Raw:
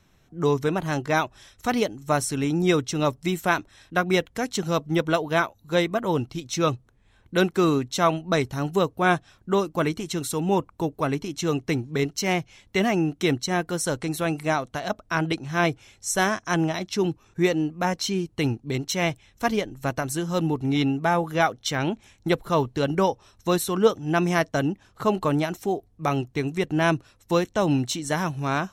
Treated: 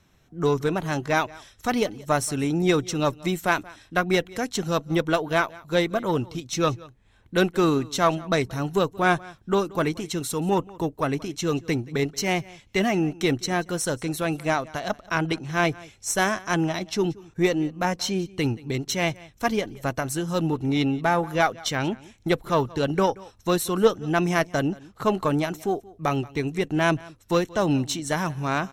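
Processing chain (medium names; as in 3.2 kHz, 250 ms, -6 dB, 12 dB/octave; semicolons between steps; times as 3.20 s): Chebyshev shaper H 6 -27 dB, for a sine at -5.5 dBFS; delay 179 ms -22 dB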